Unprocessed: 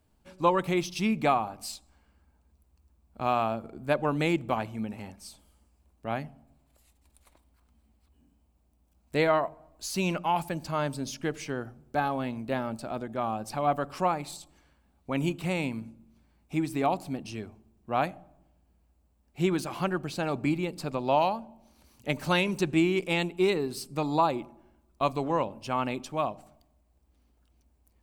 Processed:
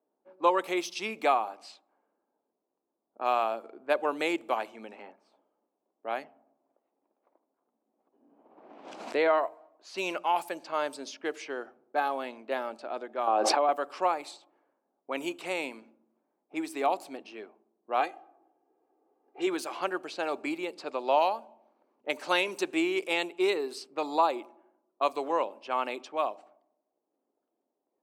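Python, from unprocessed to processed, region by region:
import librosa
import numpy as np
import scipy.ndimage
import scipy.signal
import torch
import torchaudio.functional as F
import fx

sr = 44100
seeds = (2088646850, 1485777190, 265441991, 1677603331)

y = fx.chain(x, sr, fx.lowpass(hz=5000.0, slope=12),
    fx.high_shelf(hz=2800.0, db=-5.0),
    fx.pre_swell(db_per_s=31.0), at=(6.24, 9.38))
y = fx.chain(y, sr, fx.highpass(hz=270.0, slope=24),
    fx.spacing_loss(db_at_10k=24),
    fx.env_flatten(amount_pct=100), at=(13.27, 13.69))
y = fx.chain(y, sr, fx.lowpass(hz=9000.0, slope=12),
    fx.comb(ms=2.5, depth=0.72),
    fx.band_squash(depth_pct=40), at=(18.0, 19.47))
y = fx.env_lowpass(y, sr, base_hz=640.0, full_db=-26.5)
y = scipy.signal.sosfilt(scipy.signal.butter(4, 350.0, 'highpass', fs=sr, output='sos'), y)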